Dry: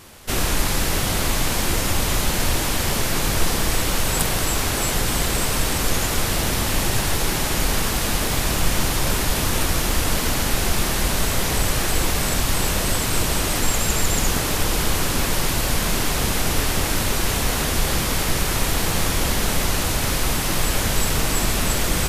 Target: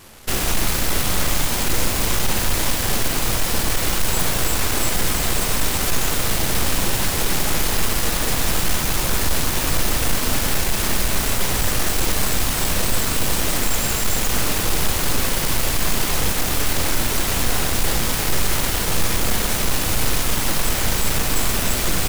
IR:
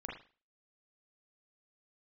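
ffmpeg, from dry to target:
-filter_complex "[0:a]aeval=exprs='0.188*(abs(mod(val(0)/0.188+3,4)-2)-1)':channel_layout=same,aeval=exprs='0.188*(cos(1*acos(clip(val(0)/0.188,-1,1)))-cos(1*PI/2))+0.0596*(cos(6*acos(clip(val(0)/0.188,-1,1)))-cos(6*PI/2))':channel_layout=same,asplit=2[link_01][link_02];[1:a]atrim=start_sample=2205,highshelf=frequency=12000:gain=8.5[link_03];[link_02][link_03]afir=irnorm=-1:irlink=0,volume=-6dB[link_04];[link_01][link_04]amix=inputs=2:normalize=0,volume=-3dB"

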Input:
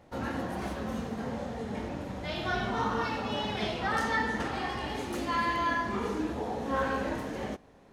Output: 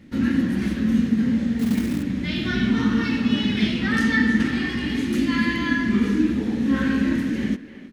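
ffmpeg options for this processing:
ffmpeg -i in.wav -filter_complex "[0:a]firequalizer=gain_entry='entry(110,0);entry(240,12);entry(410,-6);entry(720,-19);entry(1800,2);entry(6900,-3)':delay=0.05:min_phase=1,asettb=1/sr,asplit=3[link_01][link_02][link_03];[link_01]atrim=end=1.594[link_04];[link_02]atrim=start=1.59:end=2.03,asetpts=PTS-STARTPTS,afade=type=in:duration=0.004:curve=qsin,afade=type=out:start_time=0.436:duration=0.004:curve=qsin,acrusher=bits=4:mode=log:mix=0:aa=0.000001[link_05];[link_03]atrim=start=2.026[link_06];[link_04][link_05]acrossfade=duration=0.004:curve1=hsin:curve2=qsin[link_07];[link_07][link_06]acrossfade=duration=0.004:curve1=qsin:curve2=hsin,asplit=2[link_08][link_09];[link_09]adelay=320,highpass=300,lowpass=3400,asoftclip=type=hard:threshold=-24.5dB,volume=-12dB[link_10];[link_08][link_10]amix=inputs=2:normalize=0,volume=7.5dB" out.wav

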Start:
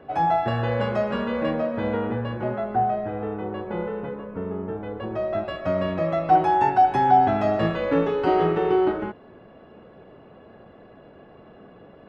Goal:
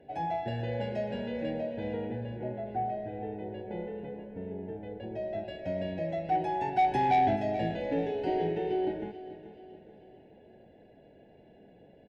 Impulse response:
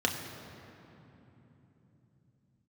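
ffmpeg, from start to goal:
-filter_complex "[0:a]asettb=1/sr,asplit=3[link_01][link_02][link_03];[link_01]atrim=end=2.214[link_04];[link_02]atrim=start=2.21:end=2.67,asetpts=PTS-STARTPTS,afade=type=in:duration=0.004:curve=qsin,afade=type=out:start_time=0.456:duration=0.004:curve=qsin,lowpass=frequency=2000:poles=1[link_05];[link_03]atrim=start=2.666[link_06];[link_04][link_05]acrossfade=duration=0.004:curve1=hsin:curve2=qsin[link_07];[link_07][link_06]acrossfade=duration=0.004:curve1=qsin:curve2=hsin,asplit=3[link_08][link_09][link_10];[link_08]afade=type=out:start_time=6.76:duration=0.02[link_11];[link_09]acontrast=43,afade=type=in:start_time=6.76:duration=0.02,afade=type=out:start_time=7.35:duration=0.02[link_12];[link_10]afade=type=in:start_time=7.35:duration=0.02[link_13];[link_11][link_12][link_13]amix=inputs=3:normalize=0,asoftclip=type=tanh:threshold=-9.5dB,asuperstop=centerf=1200:order=4:qfactor=1.3,aecho=1:1:433|866|1299|1732:0.2|0.0898|0.0404|0.0182,volume=-8.5dB"

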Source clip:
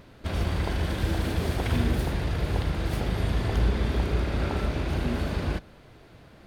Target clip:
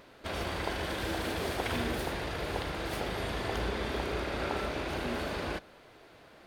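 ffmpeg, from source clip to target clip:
ffmpeg -i in.wav -af "bass=frequency=250:gain=-14,treble=frequency=4000:gain=-1" out.wav

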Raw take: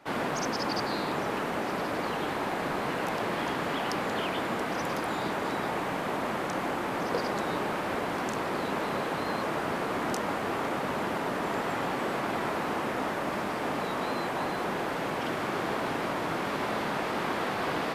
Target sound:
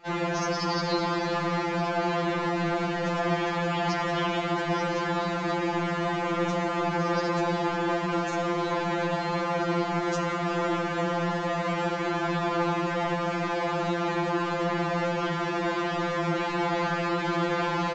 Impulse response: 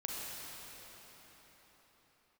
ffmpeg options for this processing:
-filter_complex "[0:a]aresample=16000,aresample=44100,asplit=2[link_01][link_02];[1:a]atrim=start_sample=2205,lowshelf=frequency=210:gain=11.5[link_03];[link_02][link_03]afir=irnorm=-1:irlink=0,volume=-2.5dB[link_04];[link_01][link_04]amix=inputs=2:normalize=0,afftfilt=real='re*2.83*eq(mod(b,8),0)':imag='im*2.83*eq(mod(b,8),0)':win_size=2048:overlap=0.75"

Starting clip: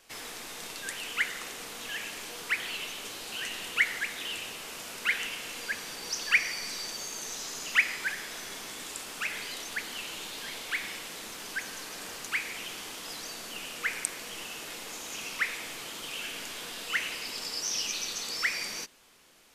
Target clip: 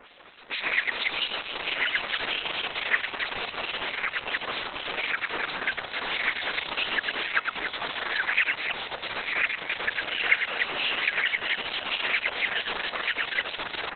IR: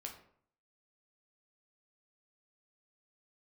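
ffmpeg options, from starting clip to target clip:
-filter_complex "[0:a]areverse,asplit=2[link_01][link_02];[link_02]alimiter=limit=-20dB:level=0:latency=1:release=410,volume=-2dB[link_03];[link_01][link_03]amix=inputs=2:normalize=0,acrossover=split=2000[link_04][link_05];[link_04]aeval=exprs='val(0)*(1-1/2+1/2*cos(2*PI*3.2*n/s))':channel_layout=same[link_06];[link_05]aeval=exprs='val(0)*(1-1/2-1/2*cos(2*PI*3.2*n/s))':channel_layout=same[link_07];[link_06][link_07]amix=inputs=2:normalize=0,equalizer=frequency=150:width_type=o:width=2.7:gain=-9.5,acrossover=split=180|2700[link_08][link_09][link_10];[link_09]acontrast=54[link_11];[link_08][link_11][link_10]amix=inputs=3:normalize=0,atempo=1.4,asoftclip=type=hard:threshold=-16dB,aecho=1:1:102|288.6:0.562|0.398,acompressor=threshold=-35dB:ratio=2,volume=8.5dB" -ar 48000 -c:a libopus -b:a 6k

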